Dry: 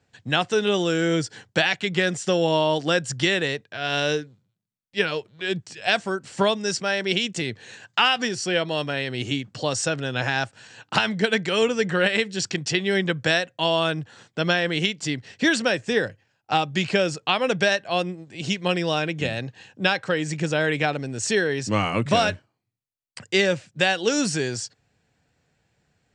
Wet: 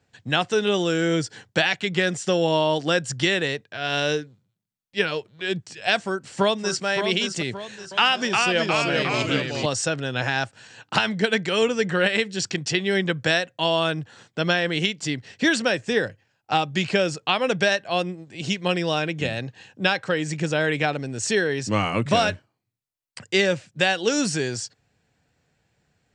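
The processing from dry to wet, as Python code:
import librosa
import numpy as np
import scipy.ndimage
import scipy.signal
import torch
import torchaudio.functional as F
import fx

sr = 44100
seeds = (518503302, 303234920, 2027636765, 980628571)

y = fx.echo_throw(x, sr, start_s=6.01, length_s=0.84, ms=570, feedback_pct=40, wet_db=-7.0)
y = fx.echo_pitch(y, sr, ms=332, semitones=-1, count=3, db_per_echo=-3.0, at=(7.58, 9.66))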